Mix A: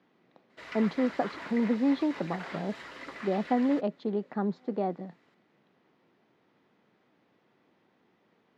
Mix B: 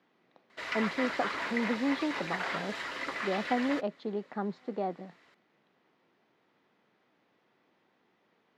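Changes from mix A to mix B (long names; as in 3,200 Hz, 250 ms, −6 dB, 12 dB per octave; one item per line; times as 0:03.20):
background +8.0 dB
master: add low-shelf EQ 410 Hz −7 dB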